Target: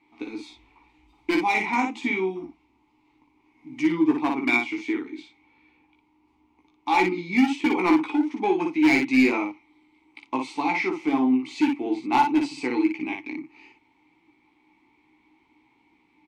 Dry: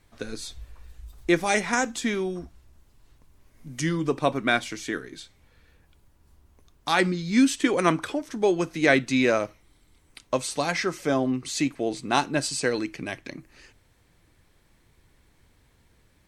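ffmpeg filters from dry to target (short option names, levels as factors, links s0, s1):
-filter_complex "[0:a]asplit=3[s0][s1][s2];[s0]bandpass=f=300:t=q:w=8,volume=1[s3];[s1]bandpass=f=870:t=q:w=8,volume=0.501[s4];[s2]bandpass=f=2240:t=q:w=8,volume=0.355[s5];[s3][s4][s5]amix=inputs=3:normalize=0,lowshelf=f=68:g=11,asplit=2[s6][s7];[s7]highpass=f=720:p=1,volume=7.08,asoftclip=type=tanh:threshold=0.211[s8];[s6][s8]amix=inputs=2:normalize=0,lowpass=f=4900:p=1,volume=0.501,asoftclip=type=hard:threshold=0.0794,asplit=2[s9][s10];[s10]aecho=0:1:16|58:0.596|0.631[s11];[s9][s11]amix=inputs=2:normalize=0,volume=1.78"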